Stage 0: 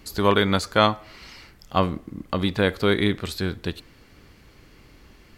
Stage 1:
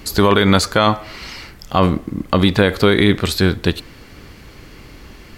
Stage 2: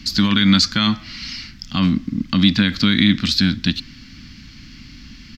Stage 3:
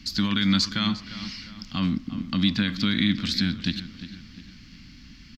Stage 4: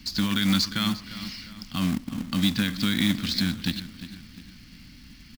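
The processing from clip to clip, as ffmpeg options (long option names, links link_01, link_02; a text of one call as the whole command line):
ffmpeg -i in.wav -af "alimiter=level_in=12.5dB:limit=-1dB:release=50:level=0:latency=1,volume=-1dB" out.wav
ffmpeg -i in.wav -filter_complex "[0:a]firequalizer=gain_entry='entry(110,0);entry(250,7);entry(400,-23);entry(1500,-3);entry(3000,3);entry(5200,8);entry(9300,-17);entry(13000,-13)':delay=0.05:min_phase=1,acrossover=split=130[link_01][link_02];[link_01]asoftclip=type=tanh:threshold=-30dB[link_03];[link_03][link_02]amix=inputs=2:normalize=0,volume=-1dB" out.wav
ffmpeg -i in.wav -filter_complex "[0:a]asplit=2[link_01][link_02];[link_02]adelay=352,lowpass=frequency=3600:poles=1,volume=-13dB,asplit=2[link_03][link_04];[link_04]adelay=352,lowpass=frequency=3600:poles=1,volume=0.49,asplit=2[link_05][link_06];[link_06]adelay=352,lowpass=frequency=3600:poles=1,volume=0.49,asplit=2[link_07][link_08];[link_08]adelay=352,lowpass=frequency=3600:poles=1,volume=0.49,asplit=2[link_09][link_10];[link_10]adelay=352,lowpass=frequency=3600:poles=1,volume=0.49[link_11];[link_01][link_03][link_05][link_07][link_09][link_11]amix=inputs=6:normalize=0,volume=-8dB" out.wav
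ffmpeg -i in.wav -af "acrusher=bits=3:mode=log:mix=0:aa=0.000001,volume=-1dB" out.wav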